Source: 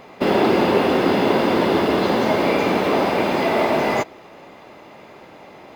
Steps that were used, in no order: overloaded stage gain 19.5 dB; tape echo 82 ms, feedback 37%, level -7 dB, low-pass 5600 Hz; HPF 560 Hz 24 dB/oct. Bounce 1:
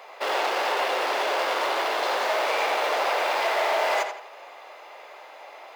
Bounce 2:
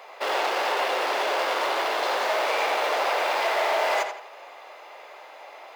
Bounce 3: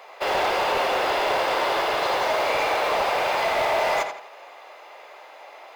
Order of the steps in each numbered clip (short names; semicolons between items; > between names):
overloaded stage > tape echo > HPF; overloaded stage > HPF > tape echo; HPF > overloaded stage > tape echo